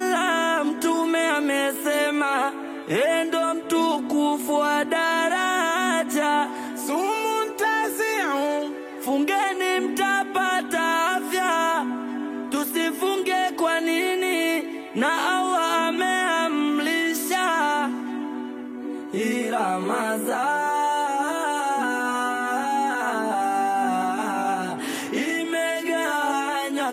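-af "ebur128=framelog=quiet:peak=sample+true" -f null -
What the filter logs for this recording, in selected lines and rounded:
Integrated loudness:
  I:         -23.3 LUFS
  Threshold: -33.3 LUFS
Loudness range:
  LRA:         2.3 LU
  Threshold: -43.4 LUFS
  LRA low:   -24.6 LUFS
  LRA high:  -22.2 LUFS
Sample peak:
  Peak:      -11.4 dBFS
True peak:
  Peak:      -11.2 dBFS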